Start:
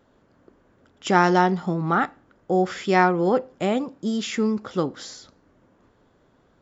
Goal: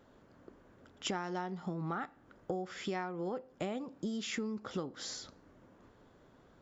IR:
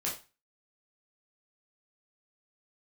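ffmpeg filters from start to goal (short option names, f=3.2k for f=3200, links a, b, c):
-af "acompressor=threshold=-33dB:ratio=12,volume=-1.5dB"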